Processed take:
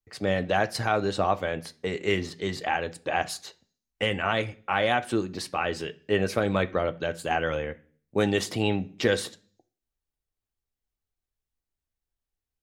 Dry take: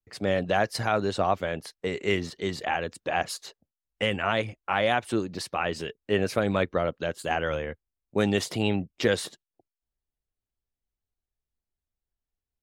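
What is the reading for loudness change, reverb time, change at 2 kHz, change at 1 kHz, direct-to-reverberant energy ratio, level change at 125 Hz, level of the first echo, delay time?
+0.5 dB, 0.45 s, +1.0 dB, +0.5 dB, 9.0 dB, +0.5 dB, no echo, no echo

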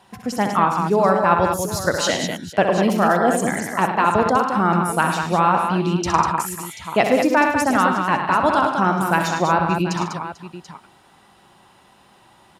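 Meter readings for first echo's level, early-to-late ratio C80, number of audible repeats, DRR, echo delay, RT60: -8.0 dB, no reverb, 6, no reverb, 64 ms, no reverb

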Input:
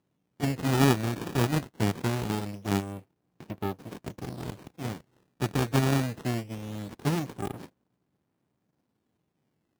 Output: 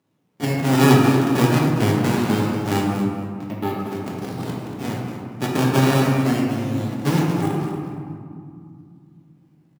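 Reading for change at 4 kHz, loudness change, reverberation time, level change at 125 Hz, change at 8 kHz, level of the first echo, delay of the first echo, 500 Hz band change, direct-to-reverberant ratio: +8.0 dB, +9.0 dB, 2.4 s, +9.0 dB, +7.0 dB, -10.5 dB, 234 ms, +10.0 dB, -3.5 dB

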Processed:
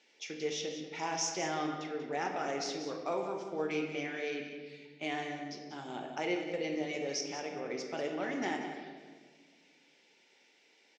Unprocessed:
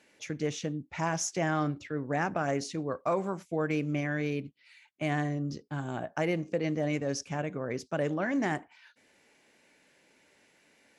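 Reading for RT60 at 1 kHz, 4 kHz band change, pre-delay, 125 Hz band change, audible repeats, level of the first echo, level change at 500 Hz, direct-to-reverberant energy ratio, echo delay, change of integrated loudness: 1.4 s, +3.0 dB, 5 ms, -16.0 dB, 1, -10.5 dB, -3.5 dB, 1.0 dB, 188 ms, -4.5 dB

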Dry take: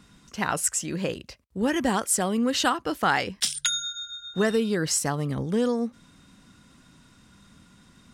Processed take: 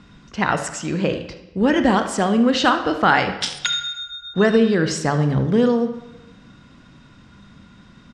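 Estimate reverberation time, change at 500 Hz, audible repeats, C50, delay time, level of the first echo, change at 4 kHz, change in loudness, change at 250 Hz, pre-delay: 1.0 s, +8.0 dB, 1, 9.0 dB, 75 ms, -16.0 dB, +4.5 dB, +6.5 dB, +8.0 dB, 24 ms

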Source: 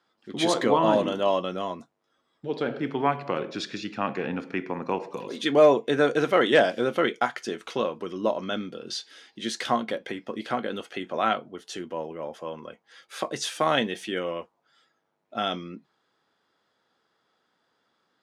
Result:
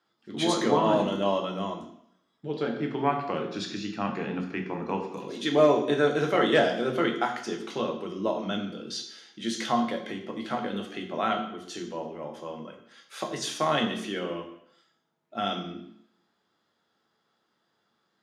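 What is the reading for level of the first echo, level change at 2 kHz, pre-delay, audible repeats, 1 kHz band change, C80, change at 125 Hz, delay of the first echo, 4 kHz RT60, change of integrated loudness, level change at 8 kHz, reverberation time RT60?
no echo, -3.0 dB, 3 ms, no echo, -1.5 dB, 10.5 dB, +1.5 dB, no echo, 0.70 s, -2.0 dB, -1.0 dB, 0.65 s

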